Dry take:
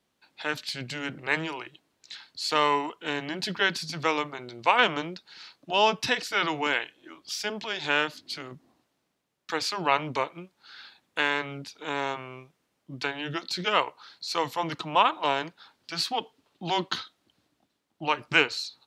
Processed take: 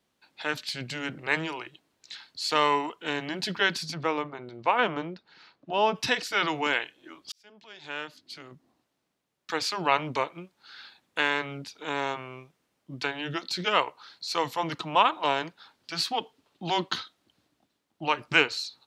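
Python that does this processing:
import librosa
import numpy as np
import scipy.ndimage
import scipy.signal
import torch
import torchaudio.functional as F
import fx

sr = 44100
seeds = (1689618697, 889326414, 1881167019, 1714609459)

y = fx.lowpass(x, sr, hz=1300.0, slope=6, at=(3.93, 5.94), fade=0.02)
y = fx.edit(y, sr, fx.fade_in_span(start_s=7.32, length_s=2.31), tone=tone)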